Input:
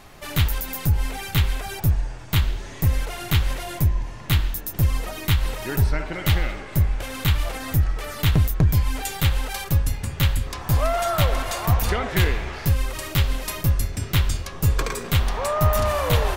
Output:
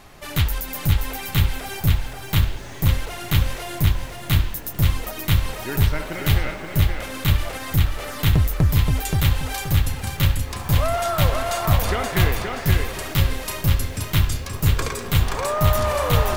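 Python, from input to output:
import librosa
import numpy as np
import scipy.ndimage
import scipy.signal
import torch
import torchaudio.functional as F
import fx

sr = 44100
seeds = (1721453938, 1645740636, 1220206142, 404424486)

y = fx.echo_crushed(x, sr, ms=526, feedback_pct=35, bits=8, wet_db=-4)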